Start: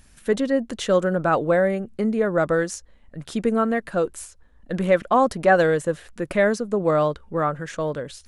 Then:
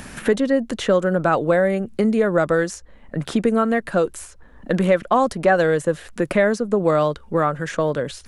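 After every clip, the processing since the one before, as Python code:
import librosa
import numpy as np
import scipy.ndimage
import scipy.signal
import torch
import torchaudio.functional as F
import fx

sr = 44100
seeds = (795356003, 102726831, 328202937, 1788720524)

y = fx.band_squash(x, sr, depth_pct=70)
y = y * 10.0 ** (2.0 / 20.0)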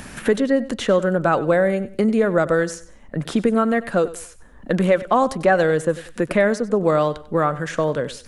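y = fx.echo_feedback(x, sr, ms=95, feedback_pct=30, wet_db=-17)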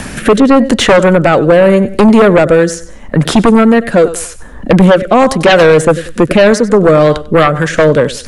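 y = fx.rotary_switch(x, sr, hz=0.85, then_hz=5.0, switch_at_s=6.57)
y = fx.fold_sine(y, sr, drive_db=8, ceiling_db=-7.0)
y = y * 10.0 ** (5.5 / 20.0)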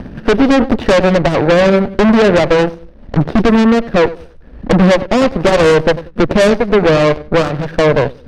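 y = scipy.ndimage.median_filter(x, 41, mode='constant')
y = scipy.signal.savgol_filter(y, 15, 4, mode='constant')
y = fx.cheby_harmonics(y, sr, harmonics=(4,), levels_db=(-9,), full_scale_db=-1.0)
y = y * 10.0 ** (-3.5 / 20.0)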